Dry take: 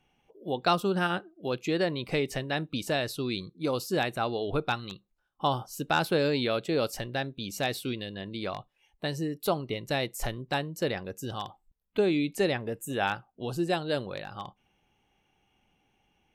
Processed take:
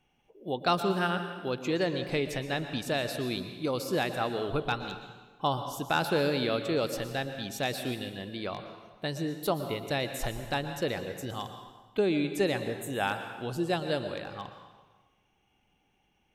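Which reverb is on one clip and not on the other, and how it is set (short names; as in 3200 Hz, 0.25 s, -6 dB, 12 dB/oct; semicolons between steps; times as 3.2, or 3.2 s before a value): plate-style reverb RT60 1.3 s, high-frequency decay 0.85×, pre-delay 0.105 s, DRR 8 dB; gain -1.5 dB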